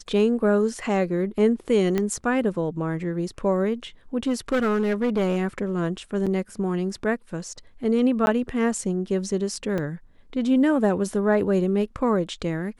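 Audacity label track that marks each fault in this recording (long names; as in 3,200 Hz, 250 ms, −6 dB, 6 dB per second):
1.980000	1.980000	click −12 dBFS
4.270000	5.380000	clipping −18 dBFS
6.260000	6.270000	drop-out 6.4 ms
8.260000	8.270000	drop-out 11 ms
9.780000	9.780000	drop-out 4.1 ms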